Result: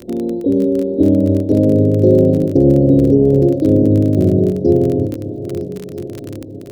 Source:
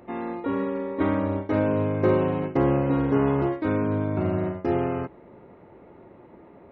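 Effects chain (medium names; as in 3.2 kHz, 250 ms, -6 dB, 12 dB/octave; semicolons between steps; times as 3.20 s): backward echo that repeats 643 ms, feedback 62%, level -12.5 dB; inverse Chebyshev band-stop 1.1–2.3 kHz, stop band 60 dB; crackle 28 per s -32 dBFS; feedback echo behind a high-pass 526 ms, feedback 40%, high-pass 2.5 kHz, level -20.5 dB; loudness maximiser +14 dB; trim -1 dB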